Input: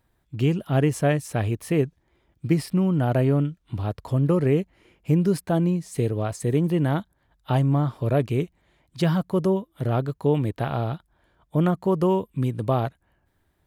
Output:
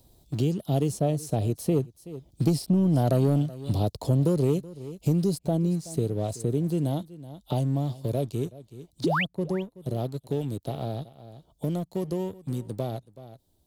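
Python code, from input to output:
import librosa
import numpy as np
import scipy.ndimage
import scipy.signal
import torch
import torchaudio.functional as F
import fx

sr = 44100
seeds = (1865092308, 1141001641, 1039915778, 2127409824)

y = fx.doppler_pass(x, sr, speed_mps=6, closest_m=7.1, pass_at_s=3.21)
y = fx.curve_eq(y, sr, hz=(690.0, 1700.0, 4100.0), db=(0, -22, 6))
y = fx.spec_paint(y, sr, seeds[0], shape='rise', start_s=9.04, length_s=0.21, low_hz=260.0, high_hz=3600.0, level_db=-29.0)
y = fx.leveller(y, sr, passes=1)
y = y + 10.0 ** (-22.0 / 20.0) * np.pad(y, (int(376 * sr / 1000.0), 0))[:len(y)]
y = fx.band_squash(y, sr, depth_pct=70)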